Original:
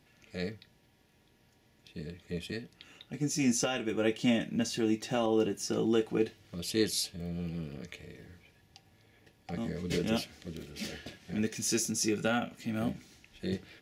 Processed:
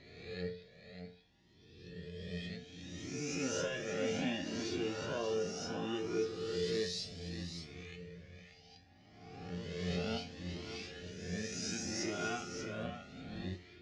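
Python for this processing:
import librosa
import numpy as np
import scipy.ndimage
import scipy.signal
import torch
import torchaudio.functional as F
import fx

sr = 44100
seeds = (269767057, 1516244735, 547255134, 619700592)

p1 = fx.spec_swells(x, sr, rise_s=1.6)
p2 = scipy.signal.sosfilt(scipy.signal.butter(4, 6000.0, 'lowpass', fs=sr, output='sos'), p1)
p3 = fx.comb_fb(p2, sr, f0_hz=89.0, decay_s=0.42, harmonics='all', damping=0.0, mix_pct=80)
p4 = p3 + fx.echo_single(p3, sr, ms=585, db=-8.0, dry=0)
p5 = fx.comb_cascade(p4, sr, direction='rising', hz=0.66)
y = p5 * librosa.db_to_amplitude(3.0)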